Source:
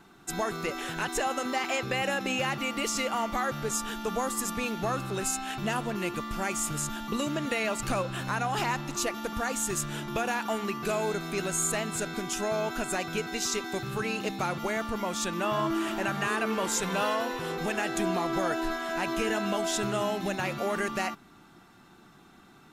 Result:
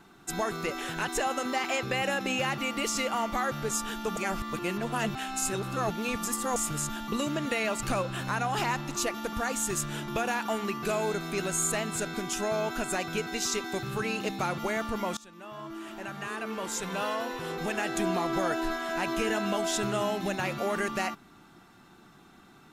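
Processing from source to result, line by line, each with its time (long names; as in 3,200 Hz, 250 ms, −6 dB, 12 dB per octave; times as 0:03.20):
0:04.17–0:06.56: reverse
0:15.17–0:18.08: fade in, from −22.5 dB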